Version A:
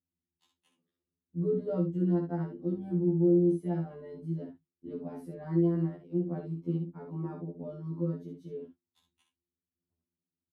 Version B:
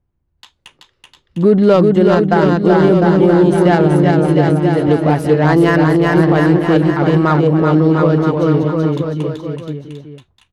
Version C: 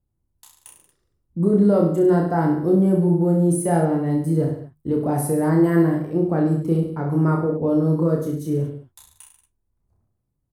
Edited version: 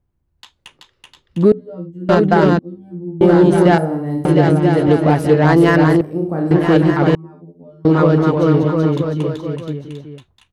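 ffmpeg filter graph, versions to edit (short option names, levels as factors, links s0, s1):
-filter_complex "[0:a]asplit=3[s0][s1][s2];[2:a]asplit=2[s3][s4];[1:a]asplit=6[s5][s6][s7][s8][s9][s10];[s5]atrim=end=1.522[s11];[s0]atrim=start=1.518:end=2.092[s12];[s6]atrim=start=2.088:end=2.592[s13];[s1]atrim=start=2.588:end=3.212[s14];[s7]atrim=start=3.208:end=3.782[s15];[s3]atrim=start=3.778:end=4.252[s16];[s8]atrim=start=4.248:end=6.012[s17];[s4]atrim=start=6.008:end=6.512[s18];[s9]atrim=start=6.508:end=7.152[s19];[s2]atrim=start=7.148:end=7.852[s20];[s10]atrim=start=7.848[s21];[s11][s12]acrossfade=d=0.004:c1=hsin:c2=hsin[s22];[s22][s13]acrossfade=d=0.004:c1=hsin:c2=hsin[s23];[s23][s14]acrossfade=d=0.004:c1=hsin:c2=hsin[s24];[s24][s15]acrossfade=d=0.004:c1=hsin:c2=hsin[s25];[s25][s16]acrossfade=d=0.004:c1=hsin:c2=hsin[s26];[s26][s17]acrossfade=d=0.004:c1=hsin:c2=hsin[s27];[s27][s18]acrossfade=d=0.004:c1=hsin:c2=hsin[s28];[s28][s19]acrossfade=d=0.004:c1=hsin:c2=hsin[s29];[s29][s20]acrossfade=d=0.004:c1=hsin:c2=hsin[s30];[s30][s21]acrossfade=d=0.004:c1=hsin:c2=hsin"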